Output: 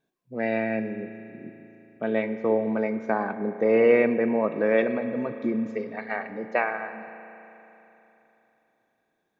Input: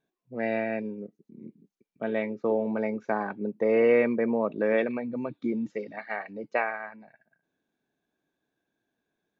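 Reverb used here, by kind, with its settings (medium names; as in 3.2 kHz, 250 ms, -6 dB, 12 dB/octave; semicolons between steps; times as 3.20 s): spring tank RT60 3.4 s, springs 36 ms, chirp 40 ms, DRR 9.5 dB; trim +2.5 dB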